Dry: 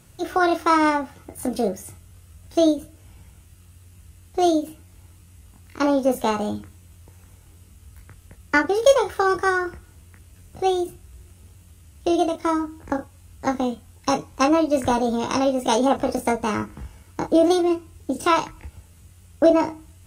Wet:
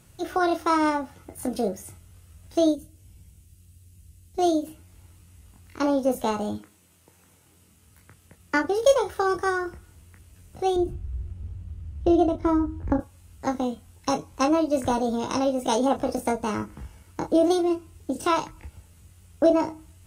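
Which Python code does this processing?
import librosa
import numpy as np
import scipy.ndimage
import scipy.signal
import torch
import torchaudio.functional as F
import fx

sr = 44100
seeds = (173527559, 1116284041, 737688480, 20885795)

y = fx.peak_eq(x, sr, hz=1100.0, db=-14.5, octaves=2.4, at=(2.75, 4.39))
y = fx.highpass(y, sr, hz=fx.line((6.57, 240.0), (8.59, 95.0)), slope=12, at=(6.57, 8.59), fade=0.02)
y = fx.riaa(y, sr, side='playback', at=(10.76, 13.0))
y = fx.dynamic_eq(y, sr, hz=2000.0, q=0.99, threshold_db=-36.0, ratio=4.0, max_db=-4)
y = y * 10.0 ** (-3.0 / 20.0)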